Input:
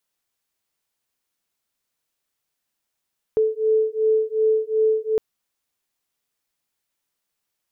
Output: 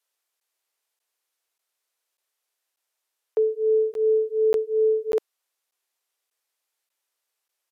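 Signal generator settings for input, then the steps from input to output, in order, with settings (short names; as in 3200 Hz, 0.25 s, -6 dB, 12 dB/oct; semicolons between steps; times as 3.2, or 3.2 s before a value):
beating tones 436 Hz, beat 2.7 Hz, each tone -20 dBFS 1.81 s
inverse Chebyshev high-pass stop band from 150 Hz, stop band 50 dB; downsampling 32000 Hz; crackling interface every 0.59 s, samples 512, zero, from 0.4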